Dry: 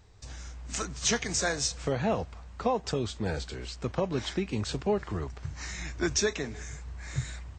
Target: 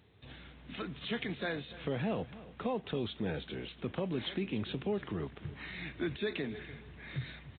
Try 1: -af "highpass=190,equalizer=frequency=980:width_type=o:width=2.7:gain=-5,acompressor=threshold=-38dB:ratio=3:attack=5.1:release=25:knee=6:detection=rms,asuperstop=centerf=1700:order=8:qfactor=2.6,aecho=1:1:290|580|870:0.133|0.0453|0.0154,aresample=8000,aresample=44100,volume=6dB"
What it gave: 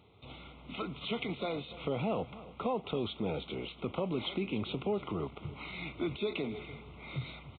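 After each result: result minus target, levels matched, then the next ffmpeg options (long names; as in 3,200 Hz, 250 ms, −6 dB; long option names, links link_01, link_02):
2,000 Hz band −3.0 dB; 1,000 Hz band +3.0 dB
-af "highpass=190,equalizer=frequency=980:width_type=o:width=2.7:gain=-5,acompressor=threshold=-38dB:ratio=3:attack=5.1:release=25:knee=6:detection=rms,aecho=1:1:290|580|870:0.133|0.0453|0.0154,aresample=8000,aresample=44100,volume=6dB"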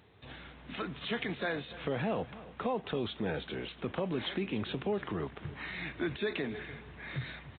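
1,000 Hz band +3.0 dB
-af "highpass=190,equalizer=frequency=980:width_type=o:width=2.7:gain=-12,acompressor=threshold=-38dB:ratio=3:attack=5.1:release=25:knee=6:detection=rms,aecho=1:1:290|580|870:0.133|0.0453|0.0154,aresample=8000,aresample=44100,volume=6dB"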